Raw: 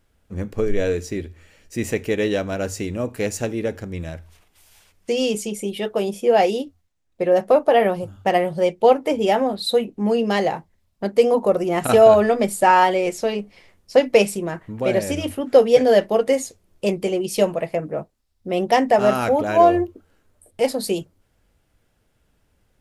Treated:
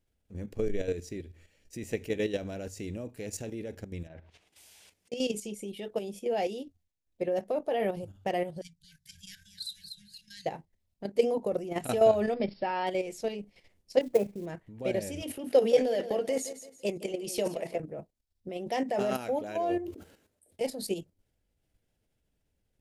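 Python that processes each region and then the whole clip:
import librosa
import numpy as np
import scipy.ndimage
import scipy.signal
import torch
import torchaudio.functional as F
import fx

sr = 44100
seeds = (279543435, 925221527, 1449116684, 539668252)

y = fx.chain(x, sr, fx.env_lowpass_down(base_hz=2100.0, full_db=-33.0),
    fx.highpass(hz=270.0, slope=6),
    fx.over_compress(threshold_db=-39.0, ratio=-0.5), at=(4.07, 5.12))
y = fx.chain(y, sr, fx.brickwall_bandstop(low_hz=170.0, high_hz=1500.0),
    fx.band_shelf(hz=2300.0, db=-15.0, octaves=1.0),
    fx.echo_warbled(ms=237, feedback_pct=49, rate_hz=2.8, cents=80, wet_db=-8.0), at=(8.61, 10.46))
y = fx.chain(y, sr, fx.law_mismatch(coded='mu'),
    fx.brickwall_lowpass(high_hz=5500.0), at=(12.34, 12.87))
y = fx.chain(y, sr, fx.lowpass(hz=1600.0, slope=24),
    fx.quant_companded(bits=6), at=(14.01, 14.46))
y = fx.chain(y, sr, fx.highpass(hz=240.0, slope=12),
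    fx.transient(attack_db=1, sustain_db=8),
    fx.echo_feedback(ms=169, feedback_pct=30, wet_db=-13.0), at=(15.22, 17.8))
y = fx.chain(y, sr, fx.highpass(hz=200.0, slope=6),
    fx.sustainer(db_per_s=88.0), at=(18.49, 20.61))
y = fx.level_steps(y, sr, step_db=10)
y = fx.peak_eq(y, sr, hz=1200.0, db=-8.5, octaves=1.0)
y = y * librosa.db_to_amplitude(-6.5)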